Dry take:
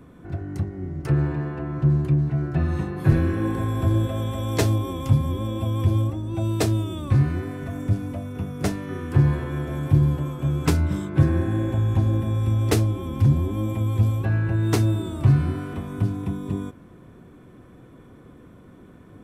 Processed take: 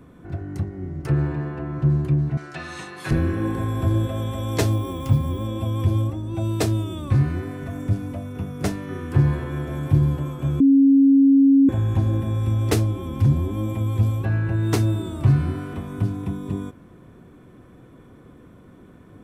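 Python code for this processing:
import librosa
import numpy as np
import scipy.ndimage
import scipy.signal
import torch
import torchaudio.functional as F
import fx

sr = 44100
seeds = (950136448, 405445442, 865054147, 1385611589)

y = fx.weighting(x, sr, curve='ITU-R 468', at=(2.37, 3.11))
y = fx.resample_bad(y, sr, factor=2, down='none', up='hold', at=(4.72, 5.45))
y = fx.edit(y, sr, fx.bleep(start_s=10.6, length_s=1.09, hz=274.0, db=-10.5), tone=tone)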